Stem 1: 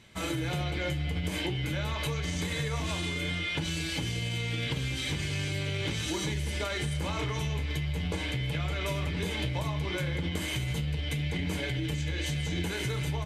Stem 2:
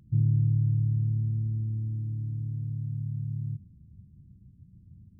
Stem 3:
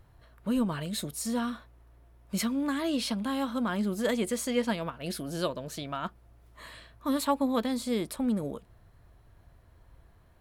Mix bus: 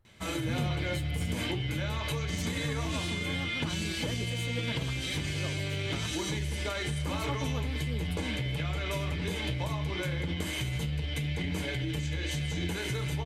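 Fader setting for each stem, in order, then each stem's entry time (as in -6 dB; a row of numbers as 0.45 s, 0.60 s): -1.0 dB, -15.5 dB, -12.0 dB; 0.05 s, 0.30 s, 0.00 s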